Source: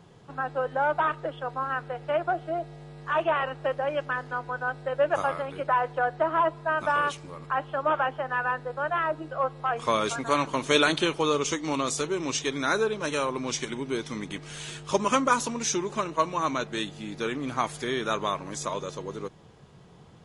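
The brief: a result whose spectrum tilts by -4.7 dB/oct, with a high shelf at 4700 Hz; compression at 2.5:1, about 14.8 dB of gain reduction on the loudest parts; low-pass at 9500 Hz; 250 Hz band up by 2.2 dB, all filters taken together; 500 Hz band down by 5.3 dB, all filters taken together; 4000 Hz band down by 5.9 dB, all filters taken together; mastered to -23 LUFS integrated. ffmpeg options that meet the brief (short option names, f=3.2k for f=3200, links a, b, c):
-af "lowpass=9.5k,equalizer=f=250:t=o:g=5.5,equalizer=f=500:t=o:g=-8,equalizer=f=4k:t=o:g=-6,highshelf=f=4.7k:g=-3,acompressor=threshold=-44dB:ratio=2.5,volume=19dB"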